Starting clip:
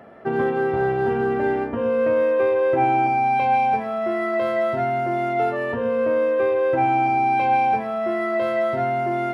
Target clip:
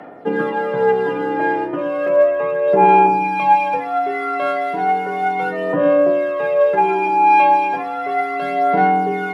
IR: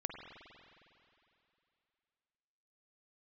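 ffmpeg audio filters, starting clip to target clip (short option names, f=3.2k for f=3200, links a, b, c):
-filter_complex "[0:a]asettb=1/sr,asplit=3[a][b][c];[a]atrim=end=2.084[d];[b]atrim=start=2.08:end=2.68,asetpts=PTS-STARTPTS,afade=t=in:d=0.004:c=qsin,afade=t=out:st=0.596:d=0.004:c=qsin,lowpass=2.3k[e];[c]atrim=start=2.676[f];[d][e]acrossfade=d=0.004:c1=hsin:c2=qsin[g];[g][f]acrossfade=d=0.004:c1=qsin:c2=hsin,aphaser=in_gain=1:out_gain=1:delay=3.8:decay=0.54:speed=0.34:type=sinusoidal,afreqshift=58,volume=2dB"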